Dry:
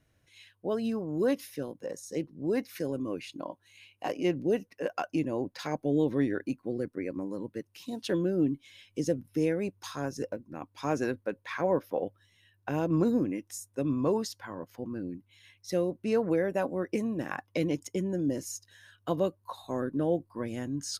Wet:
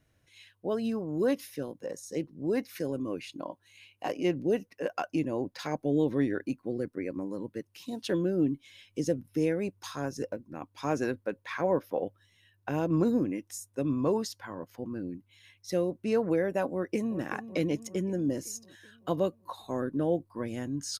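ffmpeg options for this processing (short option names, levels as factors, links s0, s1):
-filter_complex "[0:a]asplit=2[s0][s1];[s1]afade=t=in:st=16.72:d=0.01,afade=t=out:st=17.23:d=0.01,aecho=0:1:380|760|1140|1520|1900|2280|2660:0.237137|0.142282|0.0853695|0.0512217|0.030733|0.0184398|0.0110639[s2];[s0][s2]amix=inputs=2:normalize=0"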